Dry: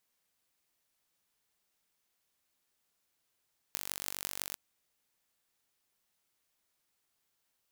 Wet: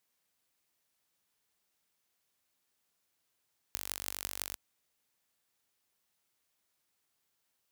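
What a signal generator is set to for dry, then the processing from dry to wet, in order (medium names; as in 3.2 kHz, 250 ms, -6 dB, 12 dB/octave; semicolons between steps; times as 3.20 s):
pulse train 48 per s, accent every 8, -6 dBFS 0.81 s
high-pass 45 Hz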